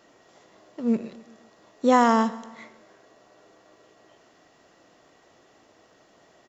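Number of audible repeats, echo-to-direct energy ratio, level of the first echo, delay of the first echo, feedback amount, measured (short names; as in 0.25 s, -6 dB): 3, -17.5 dB, -19.0 dB, 0.133 s, 51%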